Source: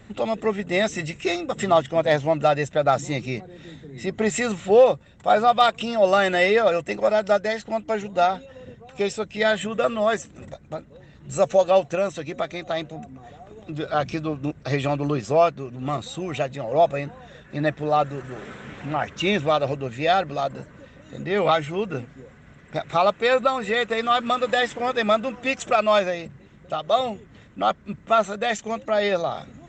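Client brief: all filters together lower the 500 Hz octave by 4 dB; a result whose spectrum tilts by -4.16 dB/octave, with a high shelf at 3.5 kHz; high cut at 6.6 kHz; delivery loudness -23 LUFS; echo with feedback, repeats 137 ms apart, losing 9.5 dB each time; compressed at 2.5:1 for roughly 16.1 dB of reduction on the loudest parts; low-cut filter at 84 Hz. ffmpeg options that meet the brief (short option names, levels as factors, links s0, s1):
-af "highpass=84,lowpass=6600,equalizer=f=500:t=o:g=-5,highshelf=f=3500:g=-4.5,acompressor=threshold=0.00891:ratio=2.5,aecho=1:1:137|274|411|548:0.335|0.111|0.0365|0.012,volume=6.31"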